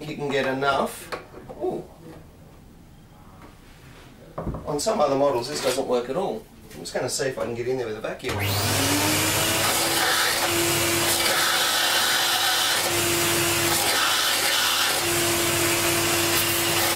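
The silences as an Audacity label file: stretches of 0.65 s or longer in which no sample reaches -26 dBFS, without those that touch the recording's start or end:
1.800000	4.380000	silence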